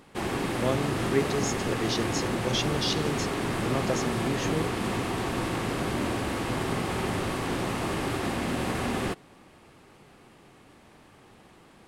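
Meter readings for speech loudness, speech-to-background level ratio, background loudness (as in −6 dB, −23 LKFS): −31.5 LKFS, −2.0 dB, −29.5 LKFS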